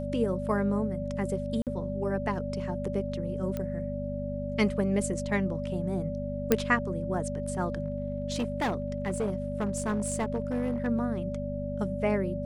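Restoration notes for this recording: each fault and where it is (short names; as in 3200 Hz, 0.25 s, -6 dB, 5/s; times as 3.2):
hum 50 Hz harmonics 5 -35 dBFS
tone 580 Hz -35 dBFS
1.62–1.67 gap 48 ms
3.57 pop -20 dBFS
6.52 pop -8 dBFS
7.84–10.88 clipped -24.5 dBFS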